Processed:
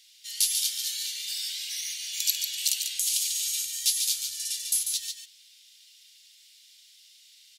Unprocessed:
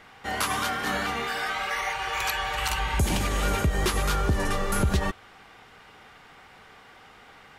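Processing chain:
inverse Chebyshev high-pass filter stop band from 1,200 Hz, stop band 60 dB
single-tap delay 144 ms −6 dB
level +9 dB

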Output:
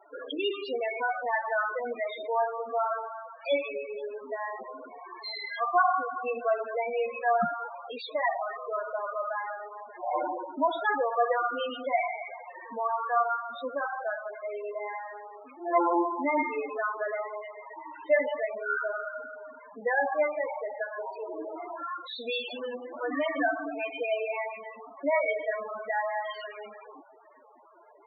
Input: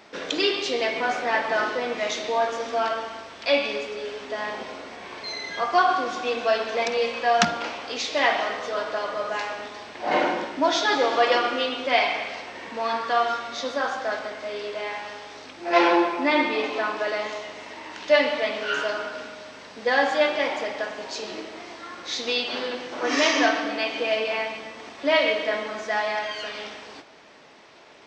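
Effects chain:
parametric band 1,200 Hz +5 dB 1.2 octaves
notch filter 6,000 Hz, Q 18
in parallel at −1 dB: downward compressor 8 to 1, threshold −33 dBFS, peak gain reduction 21.5 dB
0:20.93–0:21.98: on the sum: mid-hump overdrive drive 36 dB, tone 1,300 Hz, clips at −18 dBFS
spectral peaks only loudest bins 8
level −7 dB

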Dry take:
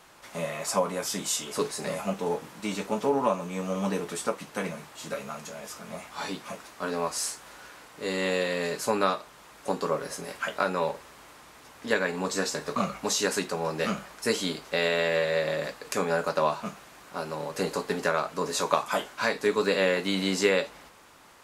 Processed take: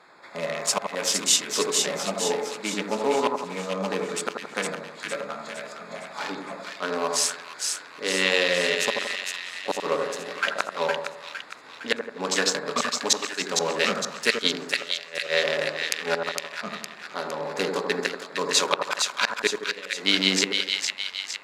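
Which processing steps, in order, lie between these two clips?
adaptive Wiener filter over 15 samples
low-shelf EQ 130 Hz −11.5 dB
gate with flip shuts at −15 dBFS, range −25 dB
meter weighting curve D
echo with a time of its own for lows and highs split 1,400 Hz, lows 84 ms, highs 460 ms, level −4 dB
level +3 dB

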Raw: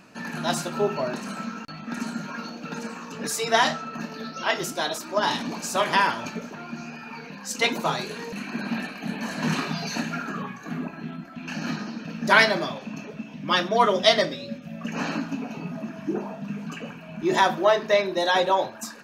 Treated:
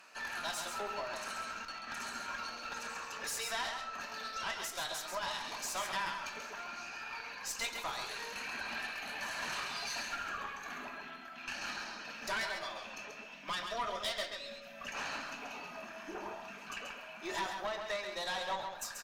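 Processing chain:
high-pass filter 840 Hz 12 dB per octave
downward compressor 2.5 to 1, threshold −36 dBFS, peak gain reduction 15.5 dB
tube saturation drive 31 dB, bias 0.55
single-tap delay 135 ms −6 dB
on a send at −14 dB: convolution reverb RT60 1.9 s, pre-delay 5 ms

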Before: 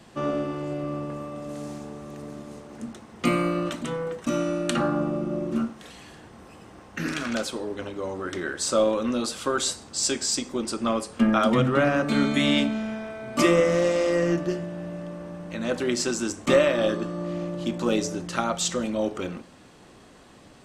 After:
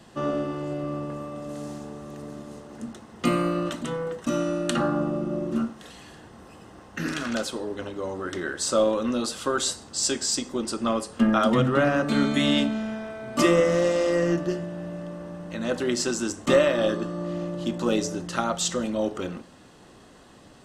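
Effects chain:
notch filter 2,300 Hz, Q 8.6

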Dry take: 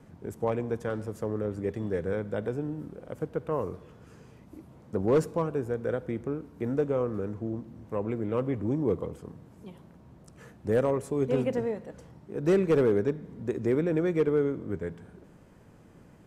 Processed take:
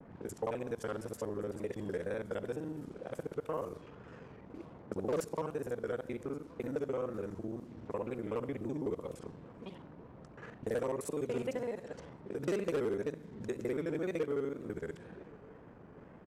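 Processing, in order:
reversed piece by piece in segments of 42 ms
downward compressor 2 to 1, threshold −43 dBFS, peak gain reduction 12.5 dB
single-tap delay 1,122 ms −22.5 dB
low-pass that shuts in the quiet parts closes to 740 Hz, open at −38 dBFS
low-shelf EQ 230 Hz −8 dB
pitch vibrato 2 Hz 82 cents
high-shelf EQ 3,700 Hz +8 dB
level +4 dB

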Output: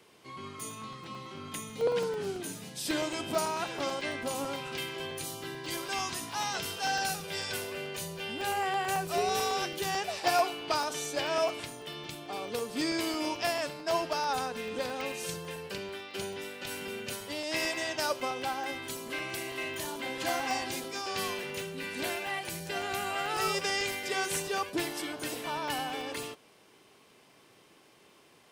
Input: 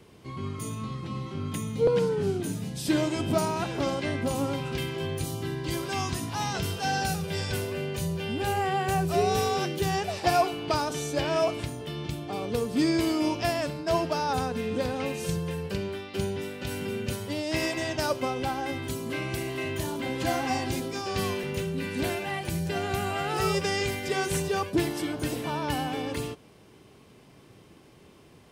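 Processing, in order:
high-pass filter 760 Hz 6 dB per octave
regular buffer underruns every 0.11 s, samples 64, zero, from 0:00.60

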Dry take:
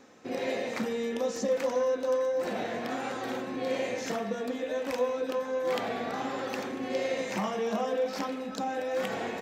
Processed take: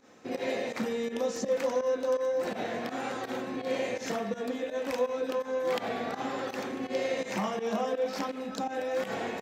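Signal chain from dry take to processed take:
fake sidechain pumping 83 BPM, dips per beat 2, −15 dB, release 93 ms

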